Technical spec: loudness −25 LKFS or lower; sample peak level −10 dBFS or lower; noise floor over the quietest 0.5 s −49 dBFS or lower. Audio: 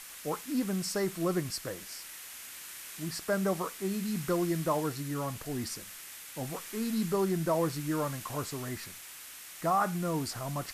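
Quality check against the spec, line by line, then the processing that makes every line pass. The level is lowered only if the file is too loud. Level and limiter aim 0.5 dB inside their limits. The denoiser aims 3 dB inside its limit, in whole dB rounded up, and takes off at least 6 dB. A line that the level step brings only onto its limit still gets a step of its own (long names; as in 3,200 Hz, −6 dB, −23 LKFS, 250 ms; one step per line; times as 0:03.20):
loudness −33.5 LKFS: in spec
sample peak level −18.0 dBFS: in spec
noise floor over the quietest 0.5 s −47 dBFS: out of spec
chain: broadband denoise 6 dB, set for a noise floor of −47 dBFS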